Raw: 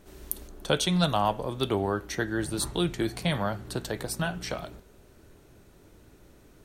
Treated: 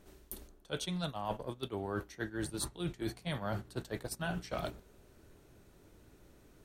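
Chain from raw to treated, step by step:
reversed playback
downward compressor 12 to 1, threshold −38 dBFS, peak gain reduction 19.5 dB
reversed playback
noise gate −42 dBFS, range −10 dB
level +4.5 dB

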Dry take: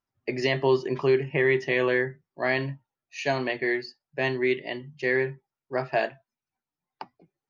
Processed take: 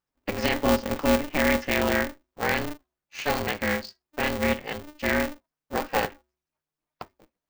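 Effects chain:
hum removal 107.9 Hz, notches 2
ring modulator with a square carrier 150 Hz

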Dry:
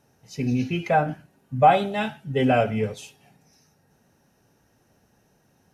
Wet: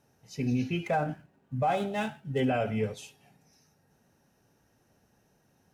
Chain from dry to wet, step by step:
0:00.86–0:02.40: running median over 9 samples
brickwall limiter −15 dBFS, peak gain reduction 9 dB
level −4.5 dB

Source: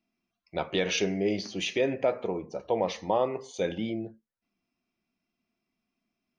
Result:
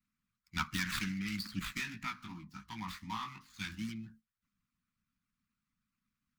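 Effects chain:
running median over 15 samples
elliptic band-stop filter 220–1,200 Hz, stop band 70 dB
harmonic and percussive parts rebalanced harmonic −13 dB
0:01.59–0:03.89: chorus effect 2.6 Hz, delay 18 ms, depth 3.2 ms
level +8 dB

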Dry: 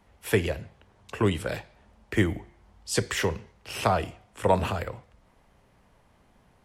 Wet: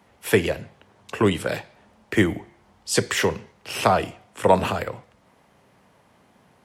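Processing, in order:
high-pass filter 130 Hz 12 dB per octave
level +5.5 dB

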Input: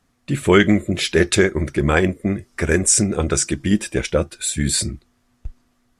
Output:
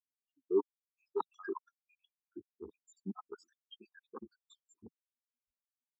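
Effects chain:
time-frequency cells dropped at random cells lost 84%
reversed playback
downward compressor 12 to 1, threshold −29 dBFS, peak gain reduction 19.5 dB
reversed playback
harmonic generator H 3 −6 dB, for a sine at −15.5 dBFS
in parallel at −8 dB: wrap-around overflow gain 24 dB
on the sum: loudspeaker in its box 170–5,300 Hz, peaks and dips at 170 Hz +5 dB, 350 Hz −5 dB, 690 Hz −3 dB, 1,200 Hz +3 dB, 2,100 Hz −9 dB, 4,300 Hz −4 dB
phaser with its sweep stopped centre 570 Hz, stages 6
every bin expanded away from the loudest bin 2.5 to 1
level +2.5 dB

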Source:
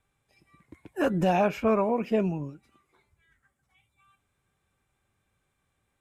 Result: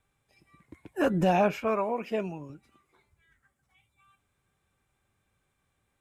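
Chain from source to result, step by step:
0:01.56–0:02.50: low-shelf EQ 360 Hz −11.5 dB

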